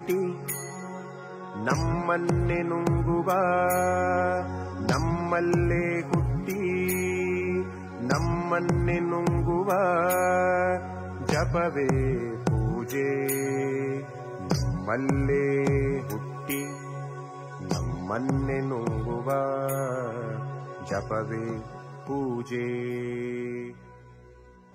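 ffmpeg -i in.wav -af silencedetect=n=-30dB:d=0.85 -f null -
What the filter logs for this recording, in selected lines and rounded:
silence_start: 23.68
silence_end: 24.74 | silence_duration: 1.06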